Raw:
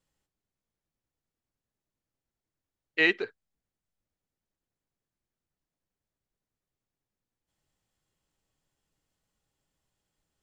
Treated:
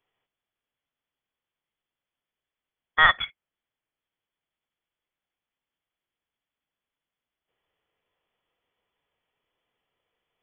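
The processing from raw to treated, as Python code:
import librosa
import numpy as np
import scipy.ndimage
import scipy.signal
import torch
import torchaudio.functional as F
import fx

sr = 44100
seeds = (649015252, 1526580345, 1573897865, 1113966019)

y = scipy.signal.sosfilt(scipy.signal.butter(4, 370.0, 'highpass', fs=sr, output='sos'), x)
y = fx.high_shelf(y, sr, hz=2100.0, db=9.5)
y = fx.freq_invert(y, sr, carrier_hz=3800)
y = y * 10.0 ** (2.0 / 20.0)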